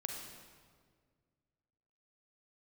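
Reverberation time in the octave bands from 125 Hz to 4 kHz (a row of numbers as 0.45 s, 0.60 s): 2.5 s, 2.3 s, 2.0 s, 1.6 s, 1.4 s, 1.3 s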